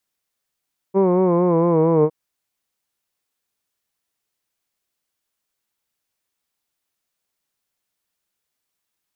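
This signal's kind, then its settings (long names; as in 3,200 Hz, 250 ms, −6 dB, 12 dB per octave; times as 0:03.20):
vowel by formant synthesis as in hood, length 1.16 s, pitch 190 Hz, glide −3.5 semitones, vibrato 4.4 Hz, vibrato depth 0.65 semitones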